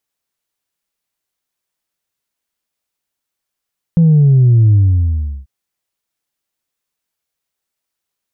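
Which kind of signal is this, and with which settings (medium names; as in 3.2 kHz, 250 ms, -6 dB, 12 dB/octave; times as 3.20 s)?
sub drop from 170 Hz, over 1.49 s, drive 0.5 dB, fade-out 0.73 s, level -6 dB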